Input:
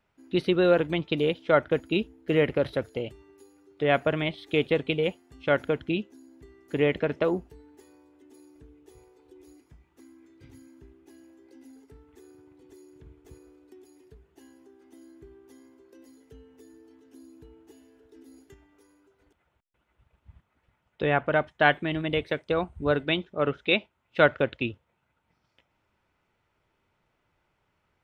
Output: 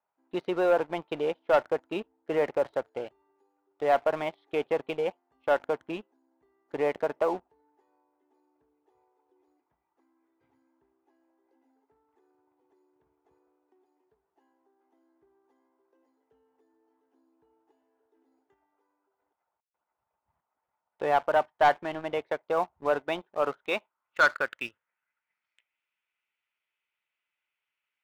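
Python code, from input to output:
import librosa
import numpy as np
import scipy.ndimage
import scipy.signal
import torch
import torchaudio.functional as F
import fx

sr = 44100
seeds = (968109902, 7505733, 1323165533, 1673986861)

y = fx.filter_sweep_bandpass(x, sr, from_hz=860.0, to_hz=2600.0, start_s=23.38, end_s=25.86, q=2.4)
y = fx.leveller(y, sr, passes=2)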